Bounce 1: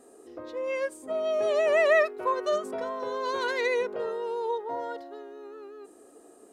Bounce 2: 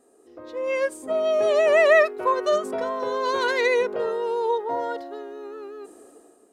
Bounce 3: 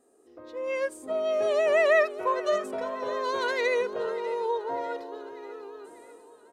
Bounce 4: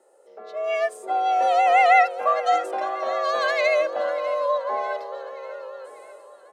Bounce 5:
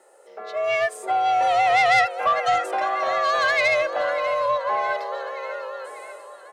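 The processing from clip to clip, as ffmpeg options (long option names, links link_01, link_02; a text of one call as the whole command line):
ffmpeg -i in.wav -af "dynaudnorm=framelen=120:gausssize=9:maxgain=12dB,volume=-5.5dB" out.wav
ffmpeg -i in.wav -af "aecho=1:1:594|1188|1782|2376|2970:0.15|0.0838|0.0469|0.0263|0.0147,volume=-5dB" out.wav
ffmpeg -i in.wav -af "highpass=85,highshelf=frequency=8600:gain=-7.5,afreqshift=120,volume=5.5dB" out.wav
ffmpeg -i in.wav -filter_complex "[0:a]equalizer=frequency=250:width_type=o:width=1:gain=-6,equalizer=frequency=500:width_type=o:width=1:gain=-4,equalizer=frequency=2000:width_type=o:width=1:gain=4,asplit=2[link_01][link_02];[link_02]acompressor=threshold=-29dB:ratio=6,volume=2.5dB[link_03];[link_01][link_03]amix=inputs=2:normalize=0,asoftclip=type=tanh:threshold=-12.5dB" out.wav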